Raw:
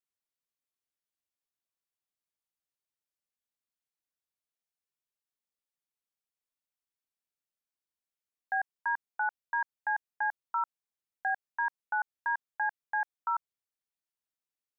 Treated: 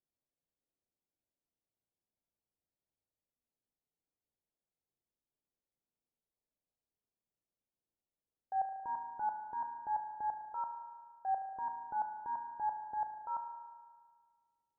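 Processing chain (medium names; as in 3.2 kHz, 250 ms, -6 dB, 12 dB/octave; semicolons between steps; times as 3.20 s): transient shaper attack -7 dB, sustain +3 dB; Bessel low-pass 550 Hz, order 6; spring tank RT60 1.7 s, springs 36 ms, chirp 65 ms, DRR 5.5 dB; trim +7 dB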